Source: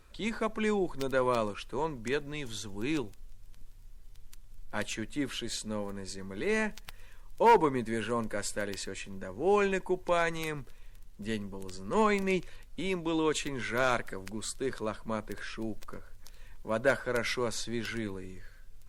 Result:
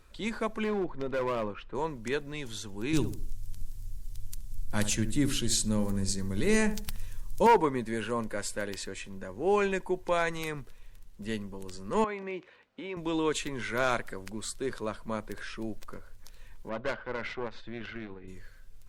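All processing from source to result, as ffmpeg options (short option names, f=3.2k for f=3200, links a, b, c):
-filter_complex "[0:a]asettb=1/sr,asplit=3[a][b][c];[a]atrim=end=0.644[d];[b]atrim=start=0.64:end=1.75,asetpts=PTS-STARTPTS,afade=t=in:d=0.004:c=qsin,afade=t=out:st=1.106:d=0.004:c=qsin,lowpass=2.3k,volume=26dB,asoftclip=hard,volume=-26dB[e];[c]atrim=start=1.746[f];[d][e]acrossfade=d=0.004:c1=hsin:c2=qsin[g];[g][f]acrossfade=d=0.004:c1=qsin:c2=hsin,asettb=1/sr,asplit=3[h][i][j];[h]atrim=end=2.934[k];[i]atrim=start=2.93:end=7.47,asetpts=PTS-STARTPTS,afade=t=in:d=0.004:c=qsin,afade=t=out:st=4.536:d=0.004:c=qsin,bass=f=250:g=13,treble=f=4k:g=12,asplit=2[l][m];[m]adelay=71,lowpass=f=1k:p=1,volume=-9.5dB,asplit=2[n][o];[o]adelay=71,lowpass=f=1k:p=1,volume=0.4,asplit=2[p][q];[q]adelay=71,lowpass=f=1k:p=1,volume=0.4,asplit=2[r][s];[s]adelay=71,lowpass=f=1k:p=1,volume=0.4[t];[l][n][p][r][t]amix=inputs=5:normalize=0,atrim=end_sample=200214[u];[j]atrim=start=7.466[v];[k][u]acrossfade=d=0.004:c1=hsin:c2=qsin[w];[w][v]acrossfade=d=0.004:c1=qsin:c2=hsin,asettb=1/sr,asplit=3[x][y][z];[x]atrim=end=12.044[aa];[y]atrim=start=12.04:end=12.97,asetpts=PTS-STARTPTS,afade=t=in:d=0.004:c=qsin,afade=t=out:st=0.926:d=0.004:c=qsin,acompressor=threshold=-32dB:ratio=2.5:attack=3.2:release=140:knee=1:detection=peak,highpass=280,lowpass=2.6k[ab];[z]atrim=start=12.966[ac];[aa][ab]acrossfade=d=0.004:c1=hsin:c2=qsin[ad];[ad][ac]acrossfade=d=0.004:c1=qsin:c2=hsin,asettb=1/sr,asplit=3[ae][af][ag];[ae]atrim=end=16.694[ah];[af]atrim=start=16.69:end=18.28,asetpts=PTS-STARTPTS,afade=t=in:d=0.004:c=qsin,afade=t=out:st=1.586:d=0.004:c=qsin,lowpass=f=3.3k:w=0.5412,lowpass=f=3.3k:w=1.3066,aeval=exprs='(tanh(22.4*val(0)+0.75)-tanh(0.75))/22.4':c=same[ai];[ag]atrim=start=18.276[aj];[ah][ai]acrossfade=d=0.004:c1=hsin:c2=qsin[ak];[ak][aj]acrossfade=d=0.004:c1=qsin:c2=hsin"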